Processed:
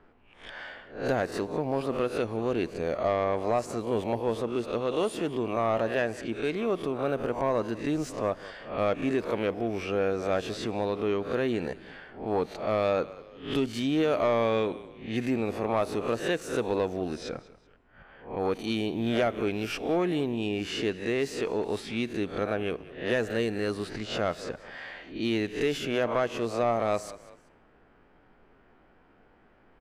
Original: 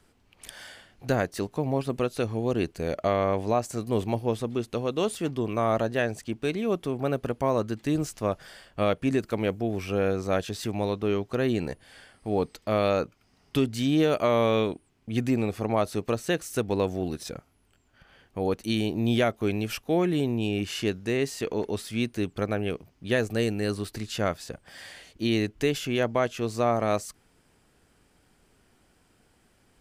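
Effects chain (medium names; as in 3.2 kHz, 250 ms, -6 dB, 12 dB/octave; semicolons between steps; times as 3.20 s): reverse spectral sustain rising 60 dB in 0.38 s; level-controlled noise filter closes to 1.9 kHz, open at -24 dBFS; frequency-shifting echo 190 ms, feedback 32%, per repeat -34 Hz, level -21 dB; in parallel at +0.5 dB: compression, threshold -37 dBFS, peak gain reduction 18 dB; on the sum: peaking EQ 91 Hz -9.5 dB 2.8 oct; on a send at -23 dB: reverberation RT60 1.2 s, pre-delay 7 ms; on the sum: saturation -16.5 dBFS, distortion -18 dB; treble shelf 4.4 kHz -12 dB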